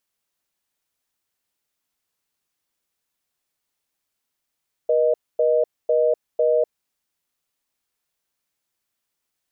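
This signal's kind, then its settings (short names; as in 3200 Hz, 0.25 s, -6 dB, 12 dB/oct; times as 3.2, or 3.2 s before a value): call progress tone reorder tone, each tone -18 dBFS 1.76 s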